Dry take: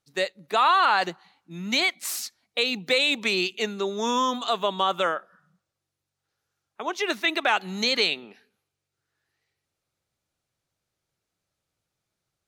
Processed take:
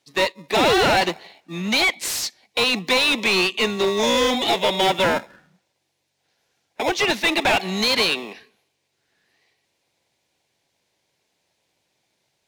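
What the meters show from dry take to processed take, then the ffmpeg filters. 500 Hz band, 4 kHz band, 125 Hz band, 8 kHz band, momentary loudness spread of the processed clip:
+7.0 dB, +5.5 dB, +9.0 dB, +7.0 dB, 9 LU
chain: -filter_complex "[0:a]acrossover=split=400|1700|8000[link_01][link_02][link_03][link_04];[link_02]acrusher=samples=29:mix=1:aa=0.000001[link_05];[link_01][link_05][link_03][link_04]amix=inputs=4:normalize=0,asplit=2[link_06][link_07];[link_07]highpass=frequency=720:poles=1,volume=24dB,asoftclip=type=tanh:threshold=-9dB[link_08];[link_06][link_08]amix=inputs=2:normalize=0,lowpass=frequency=2900:poles=1,volume=-6dB"

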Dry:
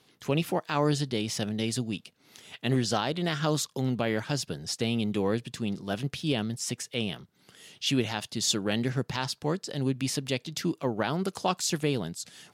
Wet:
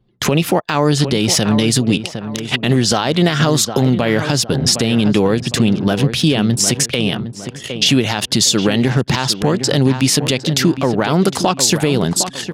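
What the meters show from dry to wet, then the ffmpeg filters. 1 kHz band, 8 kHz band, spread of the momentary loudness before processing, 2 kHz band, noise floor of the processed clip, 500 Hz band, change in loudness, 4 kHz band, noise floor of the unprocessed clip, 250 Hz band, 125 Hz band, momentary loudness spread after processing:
+12.5 dB, +17.0 dB, 6 LU, +14.0 dB, −33 dBFS, +13.5 dB, +14.5 dB, +15.5 dB, −65 dBFS, +15.0 dB, +15.0 dB, 4 LU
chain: -filter_complex "[0:a]anlmdn=0.0158,acompressor=threshold=-37dB:ratio=6,asplit=2[link_01][link_02];[link_02]adelay=759,lowpass=frequency=2000:poles=1,volume=-11dB,asplit=2[link_03][link_04];[link_04]adelay=759,lowpass=frequency=2000:poles=1,volume=0.33,asplit=2[link_05][link_06];[link_06]adelay=759,lowpass=frequency=2000:poles=1,volume=0.33,asplit=2[link_07][link_08];[link_08]adelay=759,lowpass=frequency=2000:poles=1,volume=0.33[link_09];[link_03][link_05][link_07][link_09]amix=inputs=4:normalize=0[link_10];[link_01][link_10]amix=inputs=2:normalize=0,alimiter=level_in=29dB:limit=-1dB:release=50:level=0:latency=1,volume=-2dB"

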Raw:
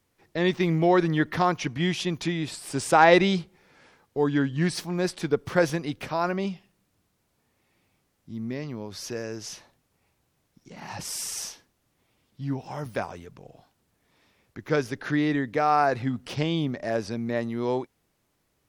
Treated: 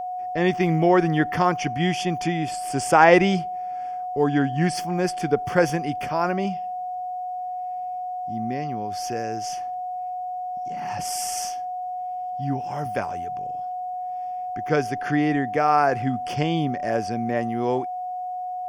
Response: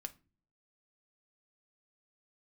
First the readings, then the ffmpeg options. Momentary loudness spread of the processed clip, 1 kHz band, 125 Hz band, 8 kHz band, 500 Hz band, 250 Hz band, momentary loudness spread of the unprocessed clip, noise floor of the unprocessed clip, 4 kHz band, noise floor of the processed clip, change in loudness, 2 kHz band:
12 LU, +6.5 dB, +2.5 dB, +2.5 dB, +3.0 dB, +2.5 dB, 15 LU, −73 dBFS, 0.0 dB, −31 dBFS, +2.0 dB, +2.5 dB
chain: -af "asuperstop=centerf=3900:order=4:qfactor=3.6,aeval=exprs='val(0)+0.0316*sin(2*PI*730*n/s)':channel_layout=same,volume=2.5dB"

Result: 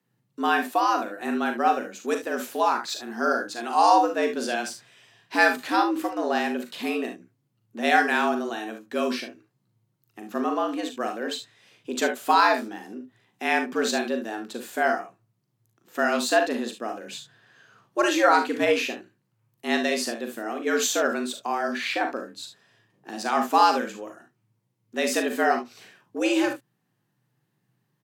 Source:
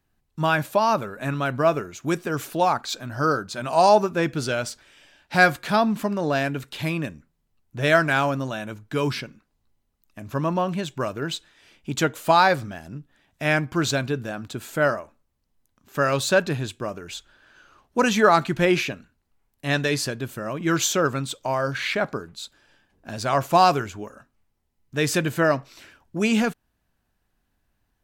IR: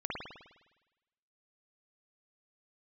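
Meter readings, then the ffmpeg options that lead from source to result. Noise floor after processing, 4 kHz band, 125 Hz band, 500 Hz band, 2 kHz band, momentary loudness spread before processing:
−74 dBFS, −1.5 dB, below −25 dB, −3.0 dB, −1.0 dB, 16 LU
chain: -af "afreqshift=110,aecho=1:1:40|56|72:0.422|0.282|0.251,volume=-3dB"

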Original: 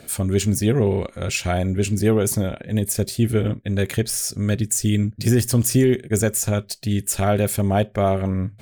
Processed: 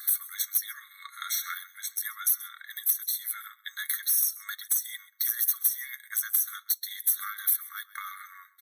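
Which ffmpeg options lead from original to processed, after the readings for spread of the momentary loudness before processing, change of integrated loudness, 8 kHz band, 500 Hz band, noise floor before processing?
6 LU, −6.5 dB, −5.5 dB, below −40 dB, −46 dBFS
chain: -filter_complex "[0:a]aresample=32000,aresample=44100,highshelf=frequency=5000:gain=7,acrossover=split=460|2500[link_01][link_02][link_03];[link_03]aexciter=amount=13.3:drive=3.2:freq=12000[link_04];[link_01][link_02][link_04]amix=inputs=3:normalize=0,flanger=delay=2.5:depth=4.7:regen=51:speed=0.41:shape=sinusoidal,acompressor=threshold=-30dB:ratio=3,lowshelf=frequency=390:gain=-4.5,asplit=2[link_05][link_06];[link_06]aecho=0:1:132:0.106[link_07];[link_05][link_07]amix=inputs=2:normalize=0,volume=21.5dB,asoftclip=hard,volume=-21.5dB,afftfilt=real='re*eq(mod(floor(b*sr/1024/1100),2),1)':imag='im*eq(mod(floor(b*sr/1024/1100),2),1)':win_size=1024:overlap=0.75,volume=7dB"

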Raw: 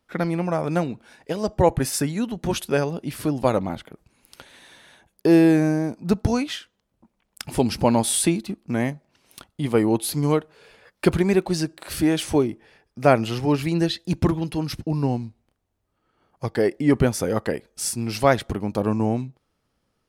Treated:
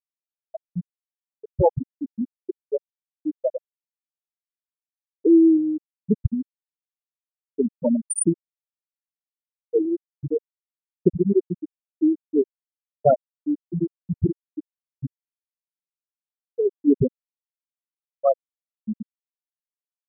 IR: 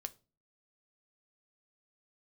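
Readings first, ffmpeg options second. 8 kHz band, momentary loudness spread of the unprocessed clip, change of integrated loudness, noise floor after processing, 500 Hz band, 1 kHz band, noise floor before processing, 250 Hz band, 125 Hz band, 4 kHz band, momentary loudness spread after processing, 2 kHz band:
−6.0 dB, 10 LU, −1.0 dB, below −85 dBFS, −2.0 dB, −6.5 dB, −75 dBFS, −1.5 dB, −7.0 dB, below −40 dB, 16 LU, below −30 dB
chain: -af "crystalizer=i=1.5:c=0,afftfilt=real='re*gte(hypot(re,im),0.891)':imag='im*gte(hypot(re,im),0.891)':win_size=1024:overlap=0.75,asuperstop=centerf=3500:order=12:qfactor=1.1,volume=1.5dB"

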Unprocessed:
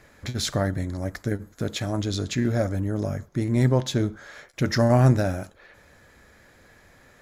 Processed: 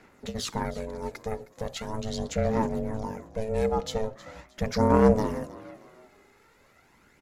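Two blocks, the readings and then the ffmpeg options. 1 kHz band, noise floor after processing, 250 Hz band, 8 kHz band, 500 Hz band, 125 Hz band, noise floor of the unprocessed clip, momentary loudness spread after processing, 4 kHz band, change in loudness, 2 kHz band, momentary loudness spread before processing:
+2.0 dB, −61 dBFS, −3.0 dB, −5.5 dB, +0.5 dB, −10.0 dB, −55 dBFS, 16 LU, −6.0 dB, −3.5 dB, −6.0 dB, 12 LU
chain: -filter_complex "[0:a]aeval=exprs='val(0)*sin(2*PI*330*n/s)':channel_layout=same,aphaser=in_gain=1:out_gain=1:delay=2.4:decay=0.44:speed=0.4:type=sinusoidal,asplit=4[link_01][link_02][link_03][link_04];[link_02]adelay=314,afreqshift=57,volume=-18dB[link_05];[link_03]adelay=628,afreqshift=114,volume=-27.4dB[link_06];[link_04]adelay=942,afreqshift=171,volume=-36.7dB[link_07];[link_01][link_05][link_06][link_07]amix=inputs=4:normalize=0,volume=-4dB"

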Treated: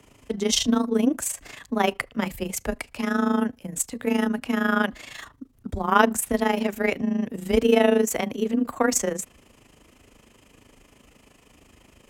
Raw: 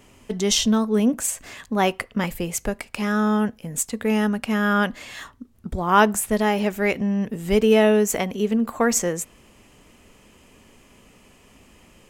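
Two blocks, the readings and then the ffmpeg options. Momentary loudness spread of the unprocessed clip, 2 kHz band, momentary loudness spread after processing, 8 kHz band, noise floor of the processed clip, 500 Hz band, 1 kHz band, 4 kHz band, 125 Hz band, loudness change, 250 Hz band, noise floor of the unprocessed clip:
13 LU, −2.0 dB, 13 LU, −2.5 dB, −58 dBFS, −2.5 dB, −2.5 dB, −2.0 dB, −7.0 dB, −2.5 dB, −2.0 dB, −54 dBFS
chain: -af "tremolo=f=26:d=0.75,afreqshift=19,volume=1dB"

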